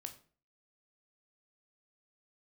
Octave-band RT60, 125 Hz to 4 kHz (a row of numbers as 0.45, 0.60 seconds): 0.50, 0.50, 0.45, 0.40, 0.35, 0.30 seconds